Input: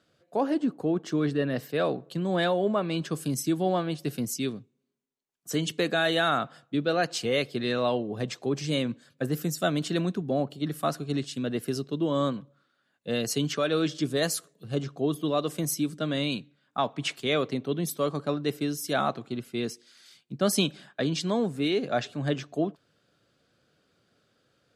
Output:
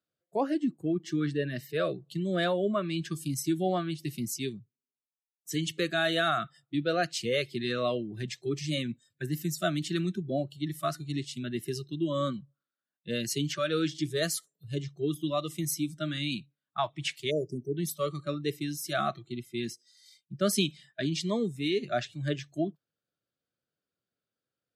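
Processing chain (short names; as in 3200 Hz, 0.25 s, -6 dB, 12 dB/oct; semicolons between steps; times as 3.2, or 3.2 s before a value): spectral delete 17.31–17.77, 720–4500 Hz; spectral noise reduction 21 dB; gain -2 dB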